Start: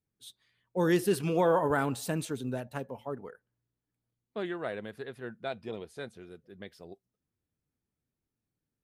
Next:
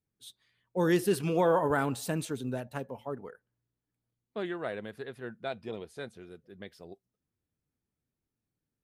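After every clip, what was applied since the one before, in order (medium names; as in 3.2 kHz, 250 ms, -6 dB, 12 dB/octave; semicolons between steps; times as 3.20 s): no audible change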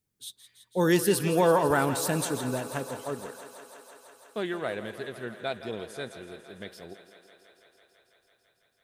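treble shelf 3.8 kHz +7.5 dB; on a send: thinning echo 166 ms, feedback 84%, high-pass 200 Hz, level -13 dB; on the sum: trim +3 dB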